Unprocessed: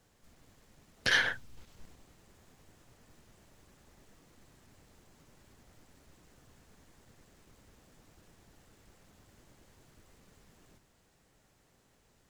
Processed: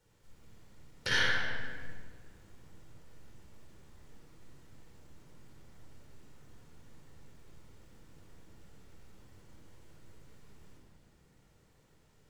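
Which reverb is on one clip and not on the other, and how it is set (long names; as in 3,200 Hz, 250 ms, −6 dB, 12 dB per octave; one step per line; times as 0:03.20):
rectangular room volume 2,500 cubic metres, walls mixed, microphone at 4.5 metres
level −7 dB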